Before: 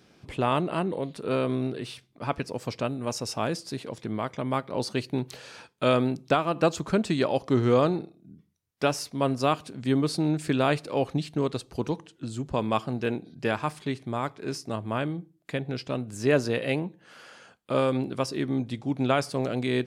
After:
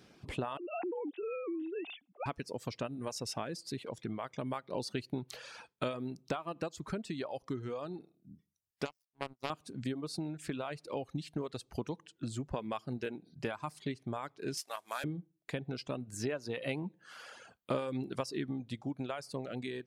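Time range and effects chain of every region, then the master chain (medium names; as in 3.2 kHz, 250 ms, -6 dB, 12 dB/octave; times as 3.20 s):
0.57–2.26 s: formants replaced by sine waves + small resonant body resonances 240/730/2600 Hz, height 12 dB, ringing for 20 ms + compression 4:1, threshold -31 dBFS
8.85–9.50 s: bass shelf 66 Hz +12 dB + power-law waveshaper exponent 3
14.57–15.04 s: CVSD coder 64 kbps + high-pass 850 Hz + treble shelf 4.8 kHz +7.5 dB
whole clip: compression 12:1, threshold -30 dBFS; reverb removal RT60 1.1 s; gain riding 2 s; trim -3 dB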